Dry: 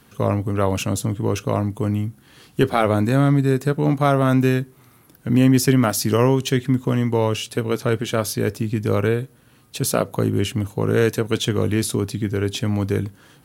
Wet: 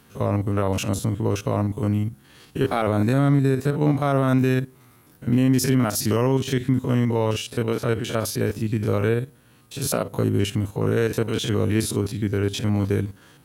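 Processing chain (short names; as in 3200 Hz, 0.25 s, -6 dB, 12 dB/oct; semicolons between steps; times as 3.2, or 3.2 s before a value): stepped spectrum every 50 ms; limiter -10 dBFS, peak gain reduction 6 dB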